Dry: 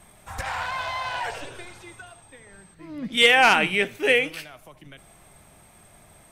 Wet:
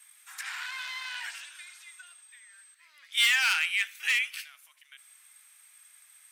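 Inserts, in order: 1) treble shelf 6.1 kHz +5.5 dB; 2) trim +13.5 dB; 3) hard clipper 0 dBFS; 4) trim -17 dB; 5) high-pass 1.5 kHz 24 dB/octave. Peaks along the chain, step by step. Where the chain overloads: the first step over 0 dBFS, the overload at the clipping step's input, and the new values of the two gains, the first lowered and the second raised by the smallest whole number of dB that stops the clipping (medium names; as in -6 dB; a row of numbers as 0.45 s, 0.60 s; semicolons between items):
-5.0 dBFS, +8.5 dBFS, 0.0 dBFS, -17.0 dBFS, -11.0 dBFS; step 2, 8.5 dB; step 2 +4.5 dB, step 4 -8 dB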